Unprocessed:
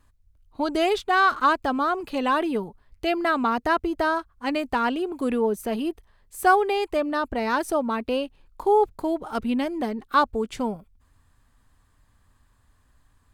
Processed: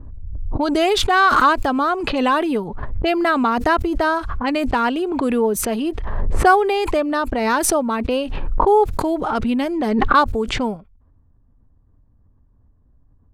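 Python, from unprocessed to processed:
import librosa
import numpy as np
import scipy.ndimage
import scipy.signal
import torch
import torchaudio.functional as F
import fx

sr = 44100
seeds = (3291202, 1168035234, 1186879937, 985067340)

y = fx.env_lowpass(x, sr, base_hz=400.0, full_db=-22.0)
y = fx.pre_swell(y, sr, db_per_s=29.0)
y = y * librosa.db_to_amplitude(4.5)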